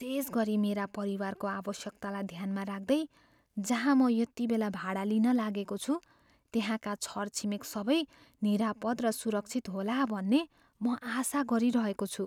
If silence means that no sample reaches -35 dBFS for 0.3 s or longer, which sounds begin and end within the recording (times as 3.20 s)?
3.58–5.97 s
6.54–8.04 s
8.43–10.43 s